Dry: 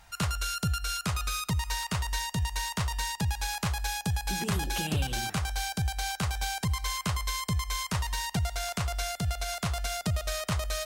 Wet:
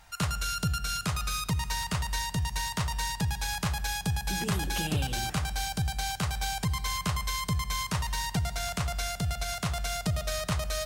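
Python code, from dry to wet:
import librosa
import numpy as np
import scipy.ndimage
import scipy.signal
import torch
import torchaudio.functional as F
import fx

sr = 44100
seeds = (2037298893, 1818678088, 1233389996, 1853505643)

y = fx.room_shoebox(x, sr, seeds[0], volume_m3=3500.0, walls='mixed', distance_m=0.45)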